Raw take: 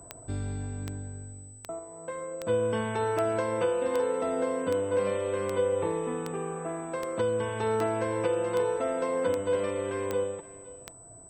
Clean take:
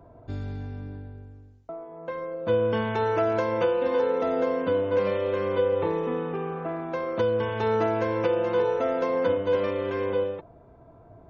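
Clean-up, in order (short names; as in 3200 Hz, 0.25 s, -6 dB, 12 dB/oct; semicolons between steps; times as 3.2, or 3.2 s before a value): de-click; notch 8000 Hz, Q 30; inverse comb 0.519 s -18.5 dB; gain 0 dB, from 1.79 s +3.5 dB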